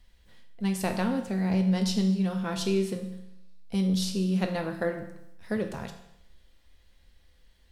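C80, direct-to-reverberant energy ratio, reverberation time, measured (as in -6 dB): 10.5 dB, 4.0 dB, 0.80 s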